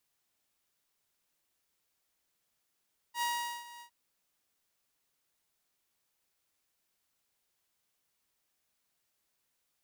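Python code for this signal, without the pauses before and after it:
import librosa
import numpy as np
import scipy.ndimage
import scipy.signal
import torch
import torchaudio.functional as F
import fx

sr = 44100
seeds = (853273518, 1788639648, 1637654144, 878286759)

y = fx.adsr_tone(sr, wave='saw', hz=951.0, attack_ms=77.0, decay_ms=420.0, sustain_db=-18.0, held_s=0.67, release_ms=89.0, level_db=-27.0)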